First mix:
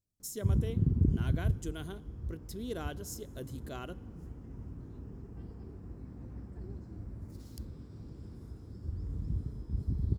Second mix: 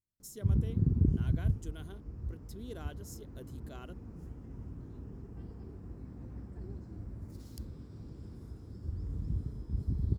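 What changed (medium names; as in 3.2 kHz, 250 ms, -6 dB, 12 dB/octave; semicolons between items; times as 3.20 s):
speech -6.0 dB; reverb: off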